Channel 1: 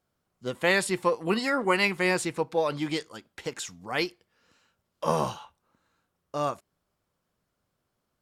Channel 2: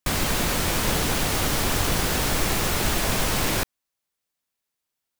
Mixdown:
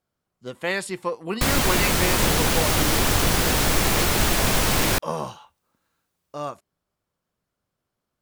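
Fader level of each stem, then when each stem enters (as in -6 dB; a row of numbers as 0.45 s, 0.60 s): -2.5 dB, +3.0 dB; 0.00 s, 1.35 s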